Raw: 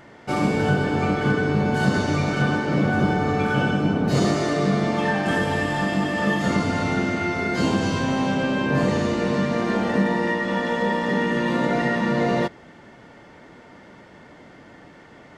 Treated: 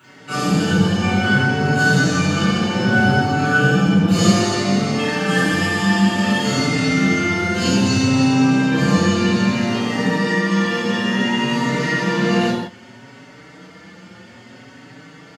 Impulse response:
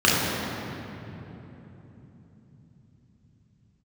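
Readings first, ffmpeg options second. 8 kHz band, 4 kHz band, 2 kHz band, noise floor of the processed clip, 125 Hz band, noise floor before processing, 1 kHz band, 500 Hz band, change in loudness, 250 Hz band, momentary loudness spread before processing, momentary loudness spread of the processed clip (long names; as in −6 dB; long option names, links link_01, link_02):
+11.5 dB, +9.5 dB, +6.5 dB, −43 dBFS, +5.0 dB, −47 dBFS, +2.5 dB, +1.0 dB, +5.0 dB, +5.5 dB, 2 LU, 5 LU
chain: -filter_complex "[0:a]highpass=85,crystalizer=i=5:c=0,asplit=2[link_01][link_02];[link_02]adelay=16,volume=-11dB[link_03];[link_01][link_03]amix=inputs=2:normalize=0[link_04];[1:a]atrim=start_sample=2205,afade=type=out:start_time=0.26:duration=0.01,atrim=end_sample=11907[link_05];[link_04][link_05]afir=irnorm=-1:irlink=0,asplit=2[link_06][link_07];[link_07]adelay=4.9,afreqshift=0.61[link_08];[link_06][link_08]amix=inputs=2:normalize=1,volume=-16dB"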